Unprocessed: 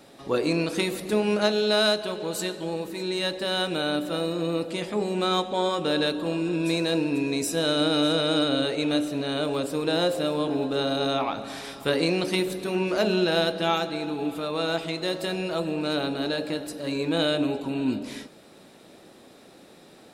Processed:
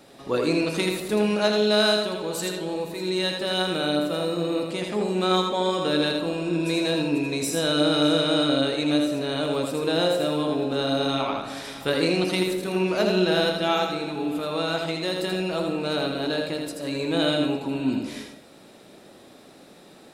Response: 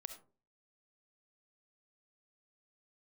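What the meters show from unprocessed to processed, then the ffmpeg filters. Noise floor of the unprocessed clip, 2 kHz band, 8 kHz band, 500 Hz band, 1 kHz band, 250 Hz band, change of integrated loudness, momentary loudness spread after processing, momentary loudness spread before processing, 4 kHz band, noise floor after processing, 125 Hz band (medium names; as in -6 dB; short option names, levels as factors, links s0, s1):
-51 dBFS, +1.5 dB, +1.5 dB, +1.5 dB, +1.5 dB, +1.5 dB, +1.5 dB, 8 LU, 7 LU, +1.5 dB, -49 dBFS, +2.0 dB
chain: -filter_complex "[0:a]asplit=2[s0][s1];[1:a]atrim=start_sample=2205,adelay=81[s2];[s1][s2]afir=irnorm=-1:irlink=0,volume=1.06[s3];[s0][s3]amix=inputs=2:normalize=0"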